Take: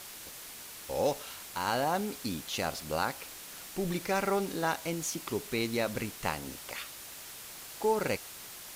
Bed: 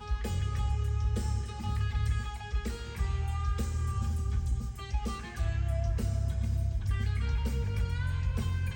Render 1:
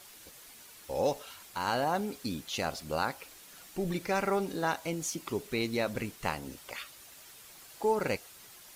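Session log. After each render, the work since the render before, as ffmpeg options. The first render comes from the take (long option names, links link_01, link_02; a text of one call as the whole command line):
ffmpeg -i in.wav -af "afftdn=noise_reduction=8:noise_floor=-46" out.wav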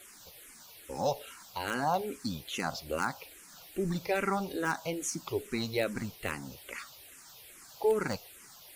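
ffmpeg -i in.wav -filter_complex "[0:a]asplit=2[link_01][link_02];[link_02]aeval=exprs='(mod(7.94*val(0)+1,2)-1)/7.94':channel_layout=same,volume=-9dB[link_03];[link_01][link_03]amix=inputs=2:normalize=0,asplit=2[link_04][link_05];[link_05]afreqshift=-2.4[link_06];[link_04][link_06]amix=inputs=2:normalize=1" out.wav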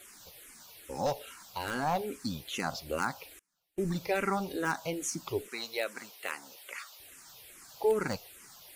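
ffmpeg -i in.wav -filter_complex "[0:a]asettb=1/sr,asplit=3[link_01][link_02][link_03];[link_01]atrim=end=1.064[link_04];[link_02]atrim=start=1.06:end=2.1,asetpts=PTS-STARTPTS,afade=type=in:duration=0.004:curve=qsin,afade=type=out:start_time=1.036:duration=0.004:curve=qsin,aeval=exprs='clip(val(0),-1,0.0422)':channel_layout=same[link_05];[link_03]atrim=start=2.096[link_06];[link_04][link_05]acrossfade=duration=0.004:curve1=hsin:curve2=qsin[link_07];[link_07][link_06]acrossfade=duration=0.004:curve1=qsin:curve2=hsin,asettb=1/sr,asplit=3[link_08][link_09][link_10];[link_08]atrim=end=3.394[link_11];[link_09]atrim=start=3.39:end=3.88,asetpts=PTS-STARTPTS,afade=type=in:duration=0.004:curve=qsin,afade=type=out:start_time=0.486:duration=0.004:curve=qsin,agate=range=-30dB:threshold=-42dB:ratio=16:release=100:detection=peak[link_12];[link_10]atrim=start=3.876[link_13];[link_11][link_12]acrossfade=duration=0.004:curve1=hsin:curve2=qsin[link_14];[link_14][link_13]acrossfade=duration=0.004:curve1=qsin:curve2=hsin,asettb=1/sr,asplit=3[link_15][link_16][link_17];[link_15]atrim=end=5.484[link_18];[link_16]atrim=start=5.48:end=7,asetpts=PTS-STARTPTS,afade=type=in:duration=0.004:curve=qsin,afade=type=out:start_time=1.516:duration=0.004:curve=qsin,highpass=580[link_19];[link_17]atrim=start=6.996[link_20];[link_18][link_19]acrossfade=duration=0.004:curve1=hsin:curve2=qsin[link_21];[link_21][link_20]acrossfade=duration=0.004:curve1=qsin:curve2=hsin" out.wav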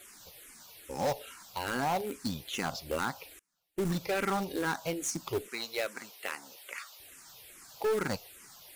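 ffmpeg -i in.wav -filter_complex "[0:a]asplit=2[link_01][link_02];[link_02]acrusher=bits=4:mix=0:aa=0.000001,volume=-4.5dB[link_03];[link_01][link_03]amix=inputs=2:normalize=0,volume=25.5dB,asoftclip=hard,volume=-25.5dB" out.wav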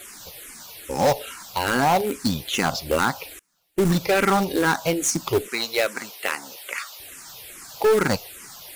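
ffmpeg -i in.wav -af "volume=11.5dB" out.wav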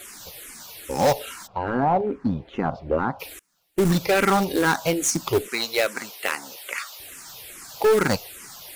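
ffmpeg -i in.wav -filter_complex "[0:a]asplit=3[link_01][link_02][link_03];[link_01]afade=type=out:start_time=1.46:duration=0.02[link_04];[link_02]lowpass=1000,afade=type=in:start_time=1.46:duration=0.02,afade=type=out:start_time=3.19:duration=0.02[link_05];[link_03]afade=type=in:start_time=3.19:duration=0.02[link_06];[link_04][link_05][link_06]amix=inputs=3:normalize=0,asettb=1/sr,asplit=3[link_07][link_08][link_09];[link_07]atrim=end=6.884[link_10];[link_08]atrim=start=6.88:end=7.43,asetpts=PTS-STARTPTS,afade=type=in:duration=0.004:curve=qsin,afade=type=out:start_time=0.546:duration=0.004:curve=qsin,acrusher=bits=5:mode=log:mix=0:aa=0.000001[link_11];[link_09]atrim=start=7.426[link_12];[link_10][link_11]acrossfade=duration=0.004:curve1=hsin:curve2=qsin[link_13];[link_13][link_12]acrossfade=duration=0.004:curve1=qsin:curve2=hsin" out.wav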